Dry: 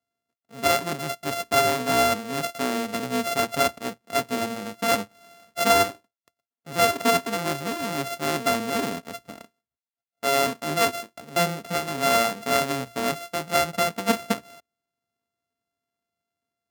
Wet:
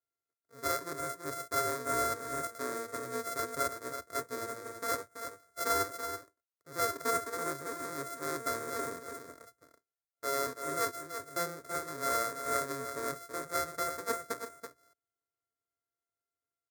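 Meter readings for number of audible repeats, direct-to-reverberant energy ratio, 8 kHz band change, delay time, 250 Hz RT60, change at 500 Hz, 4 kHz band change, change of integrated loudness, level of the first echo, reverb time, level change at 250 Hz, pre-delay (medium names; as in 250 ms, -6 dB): 1, no reverb, -8.0 dB, 331 ms, no reverb, -11.5 dB, -15.5 dB, -11.0 dB, -8.5 dB, no reverb, -15.0 dB, no reverb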